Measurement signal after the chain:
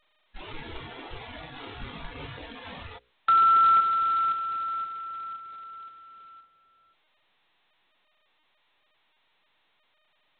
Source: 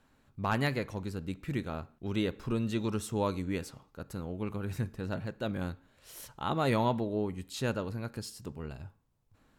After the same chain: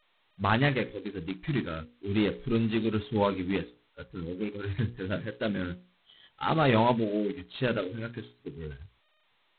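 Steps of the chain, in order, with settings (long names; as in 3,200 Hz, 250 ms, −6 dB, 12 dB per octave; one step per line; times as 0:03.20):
noise reduction from a noise print of the clip's start 26 dB
mains-hum notches 60/120/180/240/300/360/420/480/540 Hz
level +5.5 dB
G.726 16 kbit/s 8,000 Hz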